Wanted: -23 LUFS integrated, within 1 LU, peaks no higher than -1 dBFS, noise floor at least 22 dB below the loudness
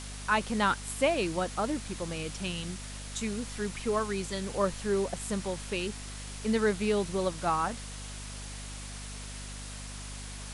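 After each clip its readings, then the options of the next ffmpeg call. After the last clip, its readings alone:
hum 50 Hz; highest harmonic 250 Hz; hum level -41 dBFS; noise floor -42 dBFS; noise floor target -55 dBFS; loudness -32.5 LUFS; peak level -13.5 dBFS; loudness target -23.0 LUFS
-> -af "bandreject=f=50:t=h:w=6,bandreject=f=100:t=h:w=6,bandreject=f=150:t=h:w=6,bandreject=f=200:t=h:w=6,bandreject=f=250:t=h:w=6"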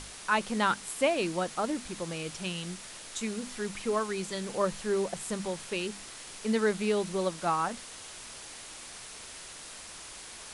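hum not found; noise floor -46 dBFS; noise floor target -55 dBFS
-> -af "afftdn=nr=9:nf=-46"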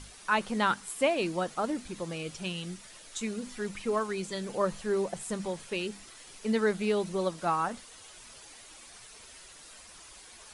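noise floor -51 dBFS; noise floor target -54 dBFS
-> -af "afftdn=nr=6:nf=-51"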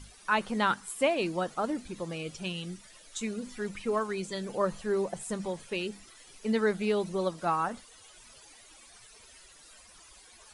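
noise floor -55 dBFS; loudness -32.0 LUFS; peak level -13.5 dBFS; loudness target -23.0 LUFS
-> -af "volume=2.82"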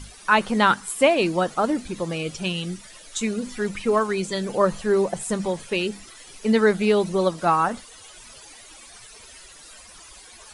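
loudness -23.0 LUFS; peak level -4.5 dBFS; noise floor -46 dBFS

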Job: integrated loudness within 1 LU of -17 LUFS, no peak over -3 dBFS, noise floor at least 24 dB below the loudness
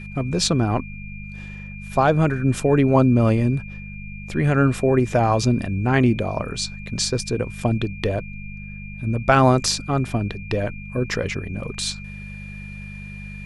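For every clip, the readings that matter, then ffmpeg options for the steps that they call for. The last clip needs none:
hum 50 Hz; highest harmonic 200 Hz; hum level -33 dBFS; steady tone 2.4 kHz; tone level -39 dBFS; loudness -21.0 LUFS; peak level -3.5 dBFS; loudness target -17.0 LUFS
-> -af "bandreject=f=50:t=h:w=4,bandreject=f=100:t=h:w=4,bandreject=f=150:t=h:w=4,bandreject=f=200:t=h:w=4"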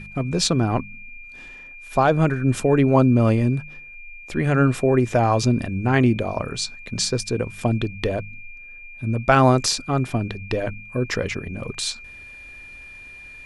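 hum not found; steady tone 2.4 kHz; tone level -39 dBFS
-> -af "bandreject=f=2400:w=30"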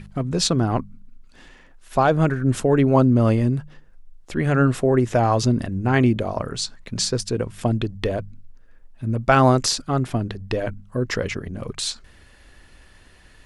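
steady tone not found; loudness -21.5 LUFS; peak level -4.0 dBFS; loudness target -17.0 LUFS
-> -af "volume=1.68,alimiter=limit=0.708:level=0:latency=1"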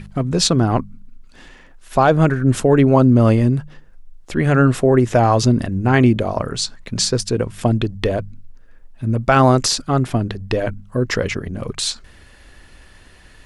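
loudness -17.5 LUFS; peak level -3.0 dBFS; noise floor -46 dBFS

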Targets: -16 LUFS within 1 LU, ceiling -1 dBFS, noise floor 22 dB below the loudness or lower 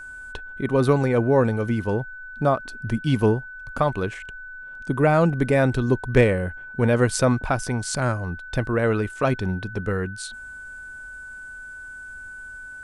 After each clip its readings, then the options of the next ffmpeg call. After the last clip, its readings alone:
steady tone 1.5 kHz; tone level -36 dBFS; loudness -22.5 LUFS; peak level -4.5 dBFS; loudness target -16.0 LUFS
-> -af "bandreject=f=1500:w=30"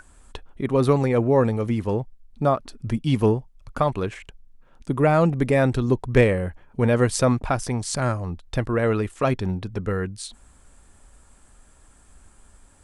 steady tone not found; loudness -23.0 LUFS; peak level -4.5 dBFS; loudness target -16.0 LUFS
-> -af "volume=2.24,alimiter=limit=0.891:level=0:latency=1"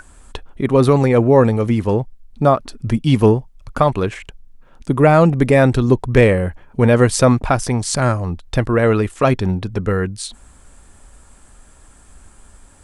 loudness -16.0 LUFS; peak level -1.0 dBFS; noise floor -47 dBFS

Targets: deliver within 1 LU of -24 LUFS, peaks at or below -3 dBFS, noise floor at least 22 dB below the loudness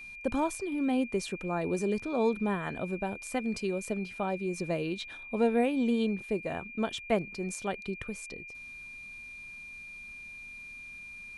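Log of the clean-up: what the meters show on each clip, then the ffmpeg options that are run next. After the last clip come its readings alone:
steady tone 2.4 kHz; tone level -43 dBFS; loudness -32.0 LUFS; peak level -13.5 dBFS; loudness target -24.0 LUFS
-> -af "bandreject=f=2400:w=30"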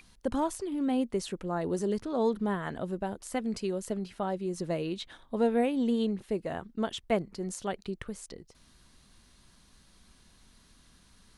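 steady tone not found; loudness -32.0 LUFS; peak level -14.0 dBFS; loudness target -24.0 LUFS
-> -af "volume=2.51"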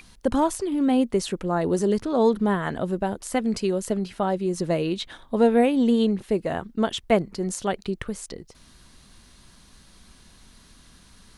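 loudness -24.0 LUFS; peak level -6.0 dBFS; noise floor -53 dBFS

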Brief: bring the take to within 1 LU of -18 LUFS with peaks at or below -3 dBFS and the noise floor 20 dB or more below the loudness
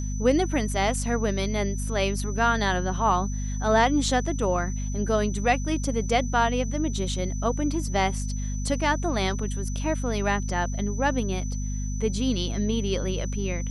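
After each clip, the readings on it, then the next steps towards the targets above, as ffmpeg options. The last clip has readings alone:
hum 50 Hz; highest harmonic 250 Hz; hum level -27 dBFS; steady tone 6 kHz; tone level -40 dBFS; loudness -26.0 LUFS; peak level -8.0 dBFS; loudness target -18.0 LUFS
-> -af "bandreject=f=50:t=h:w=4,bandreject=f=100:t=h:w=4,bandreject=f=150:t=h:w=4,bandreject=f=200:t=h:w=4,bandreject=f=250:t=h:w=4"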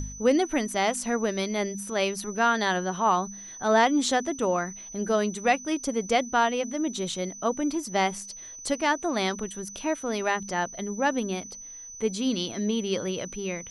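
hum not found; steady tone 6 kHz; tone level -40 dBFS
-> -af "bandreject=f=6000:w=30"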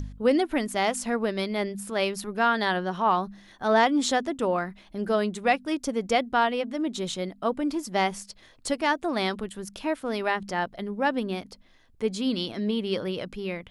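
steady tone not found; loudness -27.0 LUFS; peak level -9.0 dBFS; loudness target -18.0 LUFS
-> -af "volume=2.82,alimiter=limit=0.708:level=0:latency=1"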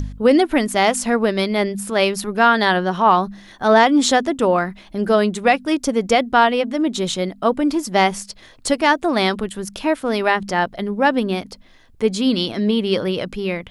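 loudness -18.5 LUFS; peak level -3.0 dBFS; noise floor -47 dBFS

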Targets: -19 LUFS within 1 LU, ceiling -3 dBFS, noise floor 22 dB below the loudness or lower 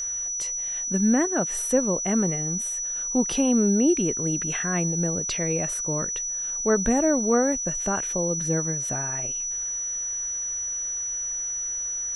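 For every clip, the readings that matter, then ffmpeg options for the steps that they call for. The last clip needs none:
steady tone 5.9 kHz; tone level -27 dBFS; loudness -24.0 LUFS; peak level -9.5 dBFS; loudness target -19.0 LUFS
-> -af "bandreject=f=5900:w=30"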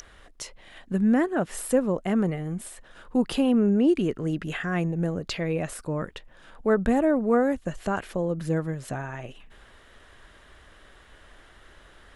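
steady tone not found; loudness -26.0 LUFS; peak level -10.5 dBFS; loudness target -19.0 LUFS
-> -af "volume=2.24"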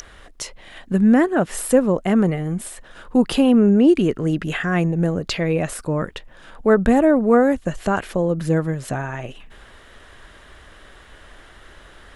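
loudness -19.0 LUFS; peak level -3.5 dBFS; noise floor -46 dBFS

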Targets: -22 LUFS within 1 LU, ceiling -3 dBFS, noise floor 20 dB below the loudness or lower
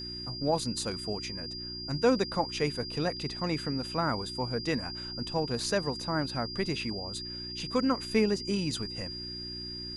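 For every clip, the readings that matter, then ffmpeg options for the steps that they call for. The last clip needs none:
hum 60 Hz; highest harmonic 360 Hz; hum level -43 dBFS; steady tone 4.8 kHz; tone level -38 dBFS; loudness -31.5 LUFS; peak level -13.0 dBFS; loudness target -22.0 LUFS
-> -af "bandreject=f=60:t=h:w=4,bandreject=f=120:t=h:w=4,bandreject=f=180:t=h:w=4,bandreject=f=240:t=h:w=4,bandreject=f=300:t=h:w=4,bandreject=f=360:t=h:w=4"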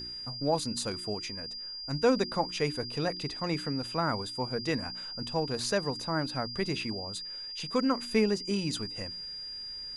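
hum not found; steady tone 4.8 kHz; tone level -38 dBFS
-> -af "bandreject=f=4800:w=30"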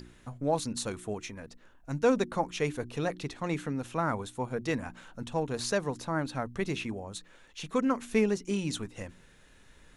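steady tone not found; loudness -32.0 LUFS; peak level -14.0 dBFS; loudness target -22.0 LUFS
-> -af "volume=3.16"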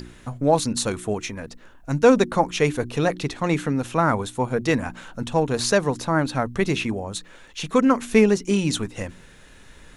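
loudness -22.0 LUFS; peak level -4.0 dBFS; noise floor -48 dBFS

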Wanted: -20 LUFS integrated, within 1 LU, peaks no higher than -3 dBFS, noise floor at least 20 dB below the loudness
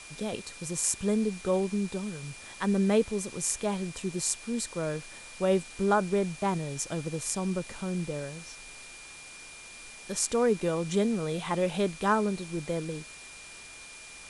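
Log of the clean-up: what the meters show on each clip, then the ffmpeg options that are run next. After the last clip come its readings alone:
steady tone 2.4 kHz; tone level -48 dBFS; noise floor -47 dBFS; noise floor target -50 dBFS; loudness -30.0 LUFS; peak level -10.0 dBFS; loudness target -20.0 LUFS
-> -af "bandreject=f=2400:w=30"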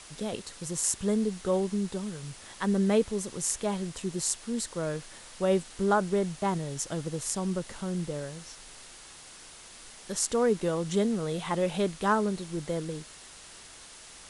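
steady tone not found; noise floor -49 dBFS; noise floor target -50 dBFS
-> -af "afftdn=nr=6:nf=-49"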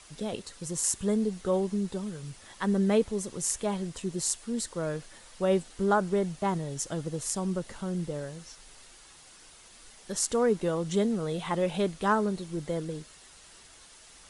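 noise floor -54 dBFS; loudness -30.0 LUFS; peak level -10.0 dBFS; loudness target -20.0 LUFS
-> -af "volume=3.16,alimiter=limit=0.708:level=0:latency=1"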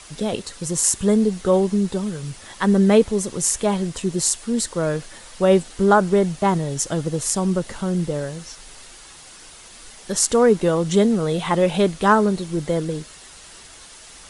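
loudness -20.0 LUFS; peak level -3.0 dBFS; noise floor -44 dBFS

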